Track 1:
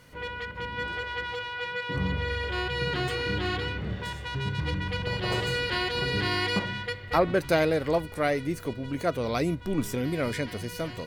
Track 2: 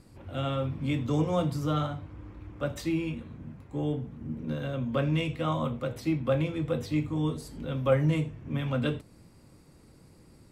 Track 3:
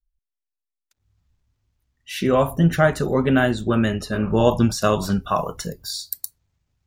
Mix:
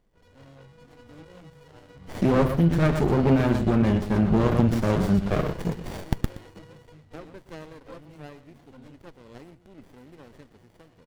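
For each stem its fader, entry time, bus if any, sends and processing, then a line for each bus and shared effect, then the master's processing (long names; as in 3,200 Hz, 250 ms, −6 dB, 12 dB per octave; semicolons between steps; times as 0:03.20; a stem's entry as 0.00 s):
−16.5 dB, 0.00 s, no bus, no send, echo send −14.5 dB, no processing
−15.0 dB, 0.00 s, bus A, no send, no echo send, barber-pole flanger 2.6 ms +1.3 Hz
0.0 dB, 0.00 s, bus A, no send, echo send −12 dB, tilt shelving filter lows +7.5 dB, about 1,200 Hz
bus A: 0.0 dB, high-shelf EQ 4,400 Hz +5 dB; brickwall limiter −8.5 dBFS, peak gain reduction 10.5 dB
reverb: not used
echo: single-tap delay 121 ms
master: tilt shelving filter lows −3.5 dB, about 1,400 Hz; windowed peak hold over 33 samples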